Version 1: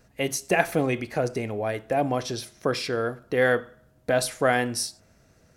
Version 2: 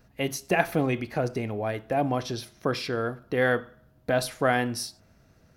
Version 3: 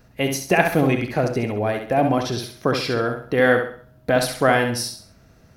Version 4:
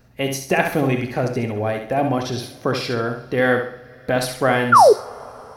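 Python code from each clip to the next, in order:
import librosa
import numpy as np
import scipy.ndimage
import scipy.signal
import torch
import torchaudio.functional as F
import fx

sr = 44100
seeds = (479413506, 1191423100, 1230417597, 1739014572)

y1 = fx.graphic_eq(x, sr, hz=(500, 2000, 8000), db=(-4, -3, -10))
y1 = y1 * librosa.db_to_amplitude(1.0)
y2 = fx.echo_feedback(y1, sr, ms=67, feedback_pct=35, wet_db=-6.5)
y2 = y2 * librosa.db_to_amplitude(6.0)
y3 = fx.spec_paint(y2, sr, seeds[0], shape='fall', start_s=4.72, length_s=0.21, low_hz=380.0, high_hz=1500.0, level_db=-8.0)
y3 = fx.rev_double_slope(y3, sr, seeds[1], early_s=0.21, late_s=4.4, knee_db=-21, drr_db=12.5)
y3 = y3 * librosa.db_to_amplitude(-1.0)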